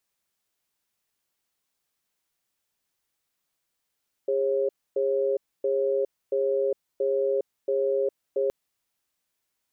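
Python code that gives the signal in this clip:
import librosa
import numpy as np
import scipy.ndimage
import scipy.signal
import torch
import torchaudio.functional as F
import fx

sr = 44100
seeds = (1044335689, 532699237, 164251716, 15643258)

y = fx.cadence(sr, length_s=4.22, low_hz=406.0, high_hz=543.0, on_s=0.41, off_s=0.27, level_db=-24.5)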